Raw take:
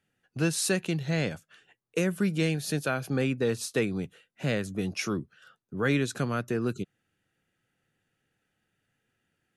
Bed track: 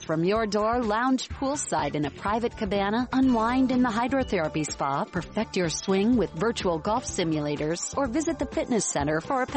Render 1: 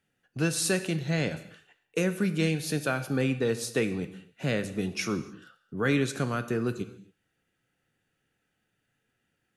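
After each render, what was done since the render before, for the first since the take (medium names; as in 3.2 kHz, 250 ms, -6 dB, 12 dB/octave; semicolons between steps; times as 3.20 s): gated-style reverb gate 300 ms falling, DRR 9.5 dB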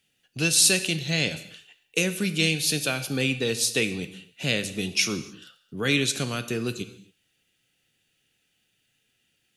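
resonant high shelf 2.1 kHz +10.5 dB, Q 1.5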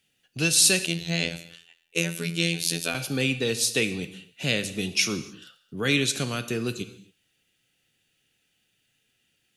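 0.86–2.95 s: robot voice 84.3 Hz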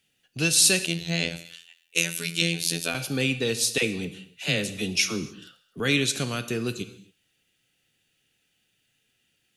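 1.45–2.42 s: tilt shelf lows -6 dB, about 1.5 kHz; 3.78–5.80 s: phase dispersion lows, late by 46 ms, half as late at 650 Hz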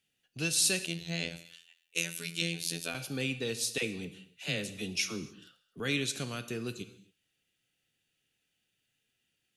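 trim -8.5 dB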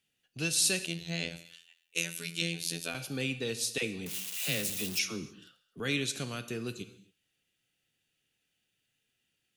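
4.06–4.99 s: zero-crossing glitches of -27 dBFS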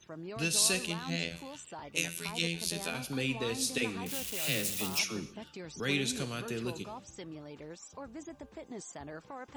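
add bed track -19 dB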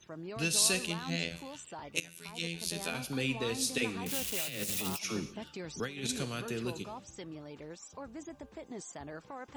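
2.00–2.88 s: fade in, from -16.5 dB; 4.06–6.09 s: compressor with a negative ratio -35 dBFS, ratio -0.5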